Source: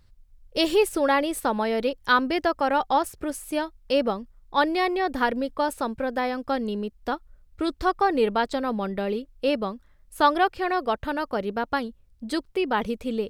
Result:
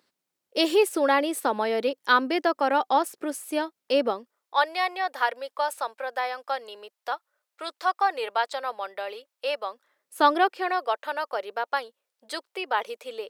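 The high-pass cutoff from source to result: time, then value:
high-pass 24 dB/octave
4.08 s 260 Hz
4.64 s 590 Hz
9.64 s 590 Hz
10.25 s 230 Hz
10.84 s 510 Hz

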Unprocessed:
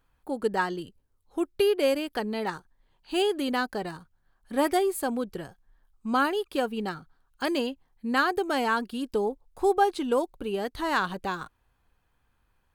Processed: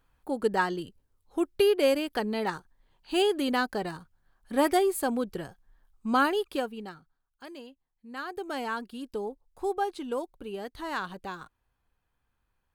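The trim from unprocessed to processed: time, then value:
6.49 s +0.5 dB
6.73 s -7.5 dB
7.46 s -17 dB
8.07 s -17 dB
8.47 s -7 dB

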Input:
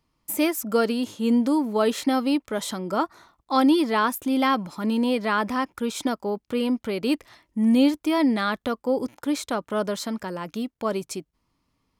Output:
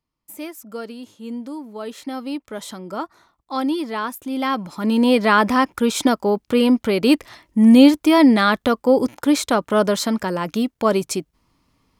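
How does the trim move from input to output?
1.80 s -10 dB
2.47 s -3.5 dB
4.25 s -3.5 dB
5.16 s +8.5 dB

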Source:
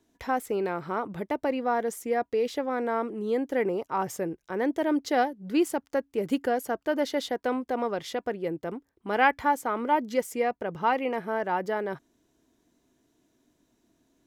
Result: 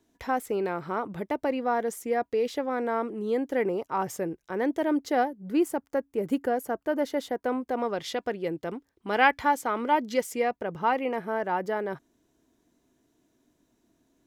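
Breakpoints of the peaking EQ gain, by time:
peaking EQ 4 kHz 1.9 oct
4.73 s -0.5 dB
5.33 s -7.5 dB
7.44 s -7.5 dB
8.15 s +4.5 dB
10.24 s +4.5 dB
10.79 s -2 dB

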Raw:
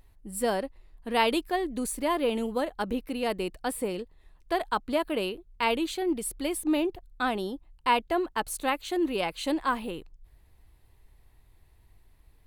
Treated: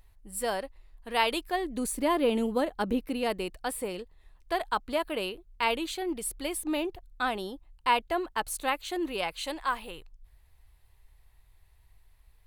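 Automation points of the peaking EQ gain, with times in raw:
peaking EQ 250 Hz 1.8 oct
1.28 s -9.5 dB
1.98 s +2.5 dB
3.04 s +2.5 dB
3.56 s -6 dB
9.05 s -6 dB
9.55 s -14 dB

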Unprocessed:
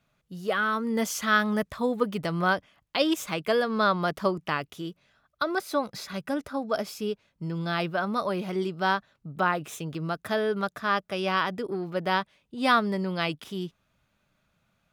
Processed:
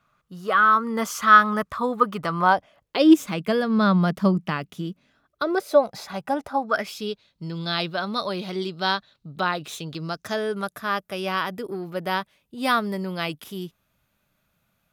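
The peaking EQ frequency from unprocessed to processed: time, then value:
peaking EQ +14 dB 0.64 oct
2.31 s 1.2 kHz
3.43 s 190 Hz
4.81 s 190 Hz
5.99 s 800 Hz
6.57 s 800 Hz
6.99 s 4 kHz
9.93 s 4 kHz
10.86 s 13 kHz

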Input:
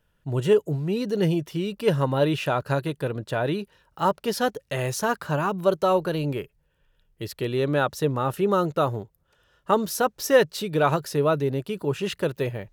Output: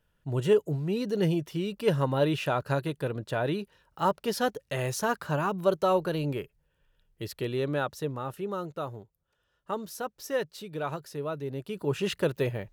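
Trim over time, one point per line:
7.35 s -3.5 dB
8.54 s -12 dB
11.35 s -12 dB
11.98 s -1.5 dB

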